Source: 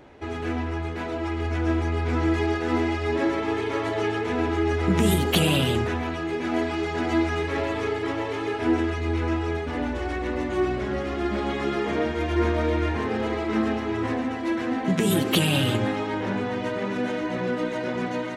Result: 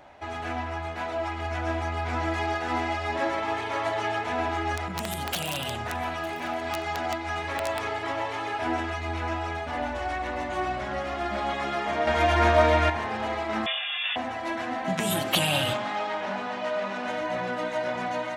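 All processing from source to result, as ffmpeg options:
ffmpeg -i in.wav -filter_complex "[0:a]asettb=1/sr,asplit=3[link_01][link_02][link_03];[link_01]atrim=end=4.774[link_04];[link_02]atrim=start=4.77:end=7.81,asetpts=PTS-STARTPTS,afade=type=in:duration=0.004:curve=qsin,afade=type=out:start_time=3.036:duration=0.004:curve=qsin,acompressor=threshold=-23dB:ratio=10:attack=3.2:release=140:knee=1:detection=peak,aeval=exprs='(mod(8.41*val(0)+1,2)-1)/8.41':channel_layout=same,aecho=1:1:906:0.106,atrim=end_sample=134064[link_05];[link_03]atrim=start=7.806[link_06];[link_04][link_05]acrossfade=duration=0.004:curve1=hsin:curve2=qsin[link_07];[link_07][link_06]acrossfade=duration=0.004:curve1=qsin:curve2=hsin,asettb=1/sr,asplit=3[link_08][link_09][link_10];[link_08]atrim=end=12.074[link_11];[link_09]atrim=start=12.07:end=12.9,asetpts=PTS-STARTPTS,afade=type=in:duration=0.004:curve=qsin,afade=type=out:start_time=0.826:duration=0.004:curve=qsin,bandreject=frequency=50:width_type=h:width=6,bandreject=frequency=100:width_type=h:width=6,bandreject=frequency=150:width_type=h:width=6,bandreject=frequency=200:width_type=h:width=6,bandreject=frequency=250:width_type=h:width=6,bandreject=frequency=300:width_type=h:width=6,bandreject=frequency=350:width_type=h:width=6,bandreject=frequency=400:width_type=h:width=6,bandreject=frequency=450:width_type=h:width=6,bandreject=frequency=500:width_type=h:width=6,acontrast=89[link_12];[link_10]atrim=start=12.896[link_13];[link_11][link_12]acrossfade=duration=0.004:curve1=hsin:curve2=qsin[link_14];[link_14][link_13]acrossfade=duration=0.004:curve1=qsin:curve2=hsin,asettb=1/sr,asplit=3[link_15][link_16][link_17];[link_15]atrim=end=13.664[link_18];[link_16]atrim=start=13.66:end=14.16,asetpts=PTS-STARTPTS,afade=type=in:duration=0.004:curve=qsin,afade=type=out:start_time=0.496:duration=0.004:curve=qsin,lowshelf=frequency=710:width_type=q:width=3:gain=-6,lowpass=frequency=3100:width_type=q:width=0.5098,lowpass=frequency=3100:width_type=q:width=0.6013,lowpass=frequency=3100:width_type=q:width=0.9,lowpass=frequency=3100:width_type=q:width=2.563,afreqshift=-3700[link_19];[link_17]atrim=start=14.156[link_20];[link_18][link_19]acrossfade=duration=0.004:curve1=hsin:curve2=qsin[link_21];[link_21][link_20]acrossfade=duration=0.004:curve1=qsin:curve2=hsin,asettb=1/sr,asplit=3[link_22][link_23][link_24];[link_22]atrim=end=15.734[link_25];[link_23]atrim=start=15.73:end=17.08,asetpts=PTS-STARTPTS,afade=type=in:duration=0.004:curve=qsin,afade=type=out:start_time=1.346:duration=0.004:curve=qsin,asoftclip=type=hard:threshold=-24.5dB,highpass=190,lowpass=7100,aecho=1:1:4.8:0.34,atrim=end_sample=59535[link_26];[link_24]atrim=start=17.076[link_27];[link_25][link_26]acrossfade=duration=0.004:curve1=hsin:curve2=qsin[link_28];[link_28][link_27]acrossfade=duration=0.004:curve1=qsin:curve2=hsin,lowshelf=frequency=530:width_type=q:width=3:gain=-6.5,bandreject=frequency=130.9:width_type=h:width=4,bandreject=frequency=261.8:width_type=h:width=4,bandreject=frequency=392.7:width_type=h:width=4,bandreject=frequency=523.6:width_type=h:width=4,bandreject=frequency=654.5:width_type=h:width=4,bandreject=frequency=785.4:width_type=h:width=4,bandreject=frequency=916.3:width_type=h:width=4,bandreject=frequency=1047.2:width_type=h:width=4,bandreject=frequency=1178.1:width_type=h:width=4,bandreject=frequency=1309:width_type=h:width=4,bandreject=frequency=1439.9:width_type=h:width=4,bandreject=frequency=1570.8:width_type=h:width=4,bandreject=frequency=1701.7:width_type=h:width=4,bandreject=frequency=1832.6:width_type=h:width=4,bandreject=frequency=1963.5:width_type=h:width=4,bandreject=frequency=2094.4:width_type=h:width=4,bandreject=frequency=2225.3:width_type=h:width=4,bandreject=frequency=2356.2:width_type=h:width=4,bandreject=frequency=2487.1:width_type=h:width=4,bandreject=frequency=2618:width_type=h:width=4,bandreject=frequency=2748.9:width_type=h:width=4,bandreject=frequency=2879.8:width_type=h:width=4,bandreject=frequency=3010.7:width_type=h:width=4,bandreject=frequency=3141.6:width_type=h:width=4,bandreject=frequency=3272.5:width_type=h:width=4,bandreject=frequency=3403.4:width_type=h:width=4,bandreject=frequency=3534.3:width_type=h:width=4" out.wav

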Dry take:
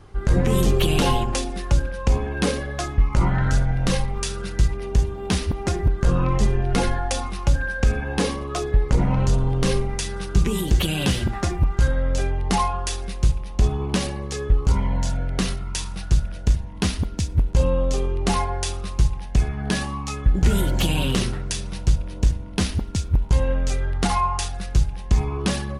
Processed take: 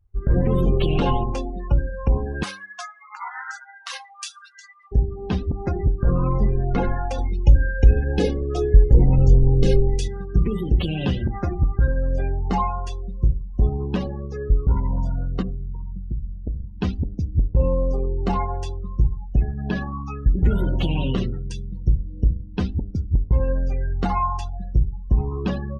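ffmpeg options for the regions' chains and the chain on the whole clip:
ffmpeg -i in.wav -filter_complex "[0:a]asettb=1/sr,asplit=3[link_01][link_02][link_03];[link_01]atrim=end=2.434[link_04];[link_02]atrim=start=2.43:end=4.92,asetpts=PTS-STARTPTS,afade=type=in:duration=0.004:curve=qsin,afade=type=out:start_time=2.486:duration=0.004:curve=qsin,highpass=frequency=860:width=0.5412,highpass=frequency=860:width=1.3066,highshelf=frequency=3000:gain=8.5[link_05];[link_03]atrim=start=4.916[link_06];[link_04][link_05]acrossfade=duration=0.004:curve1=hsin:curve2=qsin[link_07];[link_07][link_06]acrossfade=duration=0.004:curve1=qsin:curve2=hsin,asettb=1/sr,asplit=3[link_08][link_09][link_10];[link_08]atrim=end=7.184[link_11];[link_09]atrim=start=7.18:end=10.08,asetpts=PTS-STARTPTS,afade=type=in:duration=0.004:curve=qsin,afade=type=out:start_time=2.896:duration=0.004:curve=qsin,equalizer=frequency=1100:width=1:gain=-12.5,aecho=1:1:2.4:0.43,atrim=end_sample=127890,acontrast=23[link_12];[link_10]atrim=start=10.076[link_13];[link_11][link_12]acrossfade=duration=0.004:curve1=hsin:curve2=qsin[link_14];[link_14][link_13]acrossfade=duration=0.004:curve1=qsin:curve2=hsin,asettb=1/sr,asplit=3[link_15][link_16][link_17];[link_15]atrim=end=15.424[link_18];[link_16]atrim=start=15.42:end=16.64,asetpts=PTS-STARTPTS,afade=type=in:duration=0.004:curve=qsin,afade=type=out:start_time=1.216:duration=0.004:curve=qsin,lowpass=1300,acompressor=threshold=-22dB:ratio=6:attack=3.2:release=140:knee=1:detection=peak[link_19];[link_17]atrim=start=16.636[link_20];[link_18][link_19]acrossfade=duration=0.004:curve1=hsin:curve2=qsin[link_21];[link_21][link_20]acrossfade=duration=0.004:curve1=qsin:curve2=hsin,afftdn=noise_reduction=36:noise_floor=-28,aemphasis=mode=reproduction:type=75kf,bandreject=frequency=97.77:width_type=h:width=4,bandreject=frequency=195.54:width_type=h:width=4,bandreject=frequency=293.31:width_type=h:width=4,bandreject=frequency=391.08:width_type=h:width=4,bandreject=frequency=488.85:width_type=h:width=4,bandreject=frequency=586.62:width_type=h:width=4,bandreject=frequency=684.39:width_type=h:width=4,bandreject=frequency=782.16:width_type=h:width=4" out.wav

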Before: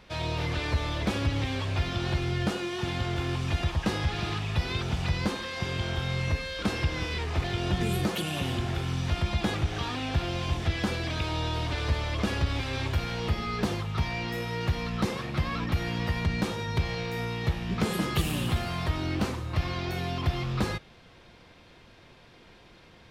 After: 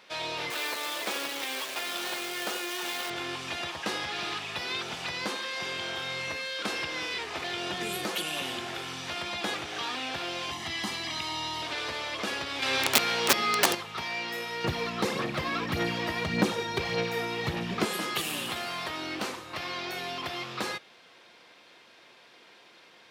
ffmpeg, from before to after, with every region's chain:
ffmpeg -i in.wav -filter_complex "[0:a]asettb=1/sr,asplit=3[link_01][link_02][link_03];[link_01]atrim=end=0.504[link_04];[link_02]atrim=start=0.5:end=3.1,asetpts=PTS-STARTPTS,afade=type=in:duration=0.004:curve=qsin,afade=type=out:start_time=2.596:duration=0.004:curve=qsin,highpass=310,acrusher=bits=7:dc=4:mix=0:aa=0.000001[link_05];[link_03]atrim=start=3.096[link_06];[link_04][link_05]acrossfade=duration=0.004:curve1=hsin:curve2=qsin[link_07];[link_07][link_06]acrossfade=duration=0.004:curve1=qsin:curve2=hsin,asettb=1/sr,asplit=3[link_08][link_09][link_10];[link_08]atrim=end=10.514[link_11];[link_09]atrim=start=10.51:end=11.62,asetpts=PTS-STARTPTS,afade=type=in:duration=0.004:curve=qsin,afade=type=out:start_time=1.106:duration=0.004:curve=qsin,aecho=1:1:1:0.69,atrim=end_sample=48951,acrossover=split=410|3000[link_12][link_13][link_14];[link_13]acompressor=threshold=-41dB:ratio=1.5:attack=3.2:release=140:knee=2.83:detection=peak[link_15];[link_12][link_15][link_14]amix=inputs=3:normalize=0[link_16];[link_10]atrim=start=11.616[link_17];[link_11][link_16]acrossfade=duration=0.004:curve1=hsin:curve2=qsin[link_18];[link_18][link_17]acrossfade=duration=0.004:curve1=qsin:curve2=hsin,asettb=1/sr,asplit=3[link_19][link_20][link_21];[link_19]atrim=end=12.624[link_22];[link_20]atrim=start=12.62:end=13.75,asetpts=PTS-STARTPTS,afade=type=in:duration=0.004:curve=qsin,afade=type=out:start_time=1.126:duration=0.004:curve=qsin,aeval=exprs='(mod(10.6*val(0)+1,2)-1)/10.6':channel_layout=same,acontrast=66[link_23];[link_21]atrim=start=13.746[link_24];[link_22][link_23]acrossfade=duration=0.004:curve1=hsin:curve2=qsin[link_25];[link_25][link_24]acrossfade=duration=0.004:curve1=qsin:curve2=hsin,asettb=1/sr,asplit=3[link_26][link_27][link_28];[link_26]atrim=end=14.644[link_29];[link_27]atrim=start=14.64:end=17.85,asetpts=PTS-STARTPTS,afade=type=in:duration=0.004:curve=qsin,afade=type=out:start_time=3.206:duration=0.004:curve=qsin,lowshelf=frequency=430:gain=11.5,aphaser=in_gain=1:out_gain=1:delay=3.1:decay=0.46:speed=1.7:type=sinusoidal[link_30];[link_28]atrim=start=17.846[link_31];[link_29][link_30]acrossfade=duration=0.004:curve1=hsin:curve2=qsin[link_32];[link_32][link_31]acrossfade=duration=0.004:curve1=qsin:curve2=hsin,highpass=320,tiltshelf=frequency=970:gain=-3" out.wav

